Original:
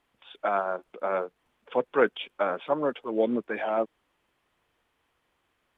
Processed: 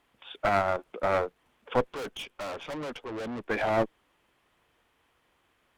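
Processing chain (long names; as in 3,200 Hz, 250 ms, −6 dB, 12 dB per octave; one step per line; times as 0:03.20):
0:01.93–0:03.48: tube saturation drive 38 dB, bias 0.55
asymmetric clip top −32.5 dBFS
level +4 dB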